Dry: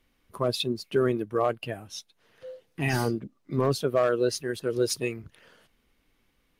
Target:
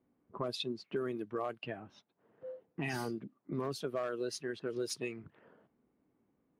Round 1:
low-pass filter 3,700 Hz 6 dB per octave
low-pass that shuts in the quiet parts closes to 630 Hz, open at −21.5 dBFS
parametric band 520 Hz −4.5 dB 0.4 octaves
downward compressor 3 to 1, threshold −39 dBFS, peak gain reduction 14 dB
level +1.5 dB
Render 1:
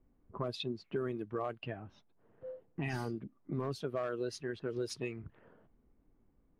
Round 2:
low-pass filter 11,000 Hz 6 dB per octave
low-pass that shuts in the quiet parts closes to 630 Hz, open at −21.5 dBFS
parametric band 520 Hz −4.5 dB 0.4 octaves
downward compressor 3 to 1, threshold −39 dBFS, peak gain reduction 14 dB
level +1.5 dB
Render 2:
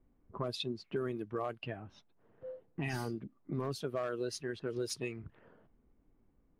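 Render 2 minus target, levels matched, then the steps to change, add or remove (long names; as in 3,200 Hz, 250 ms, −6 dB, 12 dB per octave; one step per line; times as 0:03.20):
125 Hz band +4.0 dB
add after low-pass that shuts in the quiet parts: high-pass filter 160 Hz 12 dB per octave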